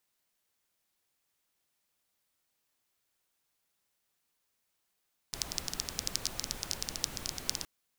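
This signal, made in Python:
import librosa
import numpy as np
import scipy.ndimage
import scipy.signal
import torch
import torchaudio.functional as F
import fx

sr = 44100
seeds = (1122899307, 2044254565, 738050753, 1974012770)

y = fx.rain(sr, seeds[0], length_s=2.32, drops_per_s=13.0, hz=5300.0, bed_db=-5.0)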